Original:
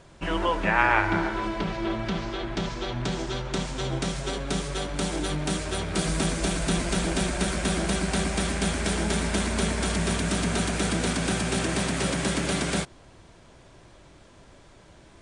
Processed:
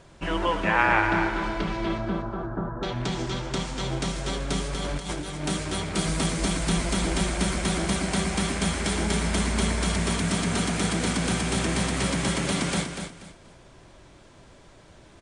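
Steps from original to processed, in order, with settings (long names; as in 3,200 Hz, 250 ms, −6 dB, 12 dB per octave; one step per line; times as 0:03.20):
0:01.98–0:02.83: Butterworth low-pass 1,600 Hz 72 dB per octave
0:04.73–0:05.45: compressor whose output falls as the input rises −31 dBFS, ratio −0.5
repeating echo 241 ms, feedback 26%, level −7.5 dB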